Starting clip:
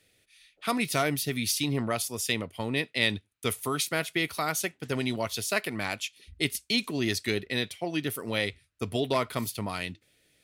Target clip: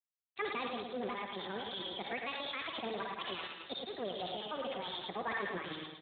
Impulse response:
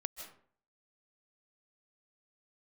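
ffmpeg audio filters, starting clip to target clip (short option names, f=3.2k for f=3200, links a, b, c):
-filter_complex "[0:a]aresample=16000,aeval=exprs='sgn(val(0))*max(abs(val(0))-0.00944,0)':c=same,aresample=44100,highshelf=f=2.8k:g=9[a];[1:a]atrim=start_sample=2205,asetrate=70560,aresample=44100[b];[a][b]afir=irnorm=-1:irlink=0,asoftclip=type=tanh:threshold=-27.5dB,areverse,acompressor=threshold=-44dB:ratio=10,areverse,aecho=1:1:189|378|567|756|945|1134:0.531|0.244|0.112|0.0517|0.0238|0.0109,asetrate=76440,aresample=44100,alimiter=level_in=15.5dB:limit=-24dB:level=0:latency=1:release=26,volume=-15.5dB,equalizer=f=140:w=5.7:g=-11,volume=12.5dB" -ar 8000 -c:a libspeex -b:a 11k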